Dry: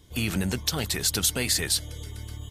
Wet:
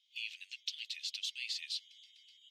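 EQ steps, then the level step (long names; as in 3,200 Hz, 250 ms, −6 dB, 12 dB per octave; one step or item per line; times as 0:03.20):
Butterworth high-pass 2,600 Hz 48 dB per octave
high-frequency loss of the air 210 metres
high-shelf EQ 3,400 Hz −8 dB
+1.0 dB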